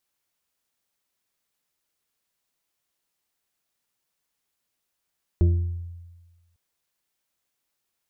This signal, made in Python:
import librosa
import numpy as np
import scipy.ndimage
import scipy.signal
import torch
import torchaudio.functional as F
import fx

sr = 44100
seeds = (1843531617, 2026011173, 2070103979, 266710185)

y = fx.fm2(sr, length_s=1.15, level_db=-13, carrier_hz=86.0, ratio=3.02, index=0.57, index_s=0.96, decay_s=1.31, shape='exponential')